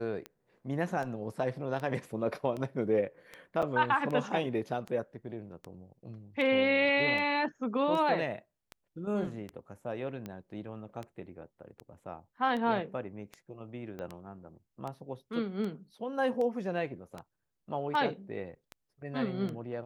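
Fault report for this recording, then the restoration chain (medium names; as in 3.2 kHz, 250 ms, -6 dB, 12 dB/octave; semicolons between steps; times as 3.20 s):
tick 78 rpm -26 dBFS
3.62–3.63 s: dropout 6.2 ms
13.99 s: pop -28 dBFS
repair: de-click; interpolate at 3.62 s, 6.2 ms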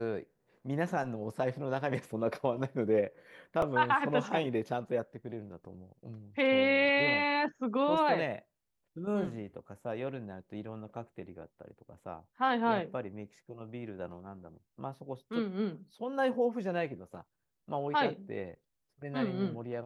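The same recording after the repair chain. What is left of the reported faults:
13.99 s: pop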